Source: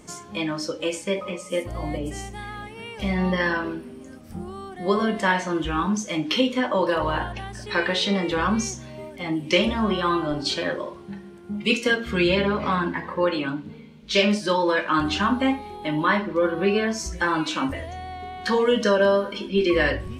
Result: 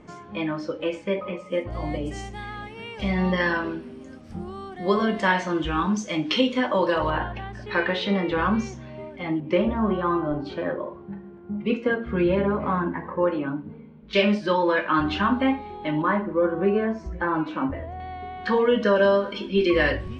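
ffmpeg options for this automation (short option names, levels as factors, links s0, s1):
-af "asetnsamples=n=441:p=0,asendcmd='1.72 lowpass f 5500;7.1 lowpass f 2700;9.4 lowpass f 1300;14.13 lowpass f 2900;16.02 lowpass f 1300;18 lowpass f 2600;18.96 lowpass f 4900',lowpass=2400"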